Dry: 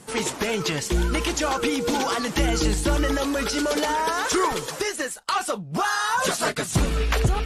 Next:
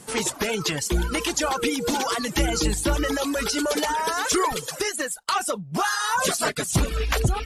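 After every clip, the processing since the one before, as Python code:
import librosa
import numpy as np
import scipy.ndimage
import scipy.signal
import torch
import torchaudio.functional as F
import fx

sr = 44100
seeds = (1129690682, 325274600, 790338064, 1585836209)

y = fx.dereverb_blind(x, sr, rt60_s=0.71)
y = fx.high_shelf(y, sr, hz=5900.0, db=5.5)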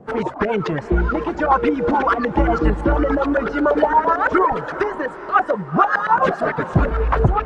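y = fx.filter_lfo_lowpass(x, sr, shape='saw_up', hz=8.9, low_hz=650.0, high_hz=1700.0, q=2.6)
y = fx.rotary(y, sr, hz=7.0)
y = fx.echo_diffused(y, sr, ms=451, feedback_pct=53, wet_db=-14.0)
y = F.gain(torch.from_numpy(y), 7.0).numpy()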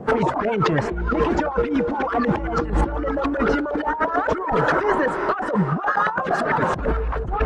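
y = fx.over_compress(x, sr, threshold_db=-25.0, ratio=-1.0)
y = F.gain(torch.from_numpy(y), 3.0).numpy()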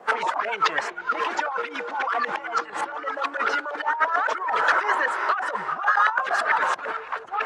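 y = scipy.signal.sosfilt(scipy.signal.butter(2, 1100.0, 'highpass', fs=sr, output='sos'), x)
y = F.gain(torch.from_numpy(y), 3.5).numpy()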